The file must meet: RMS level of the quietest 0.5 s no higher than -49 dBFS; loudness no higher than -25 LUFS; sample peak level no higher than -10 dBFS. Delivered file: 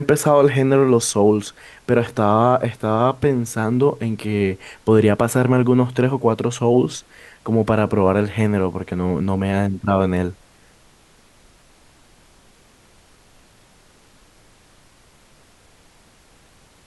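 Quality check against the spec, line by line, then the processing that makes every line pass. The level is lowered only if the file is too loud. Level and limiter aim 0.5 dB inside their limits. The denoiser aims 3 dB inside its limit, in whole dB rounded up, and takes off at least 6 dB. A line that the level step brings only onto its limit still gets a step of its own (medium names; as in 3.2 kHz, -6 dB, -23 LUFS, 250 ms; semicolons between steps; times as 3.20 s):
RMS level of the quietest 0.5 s -52 dBFS: pass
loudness -18.5 LUFS: fail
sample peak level -3.0 dBFS: fail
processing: trim -7 dB; peak limiter -10.5 dBFS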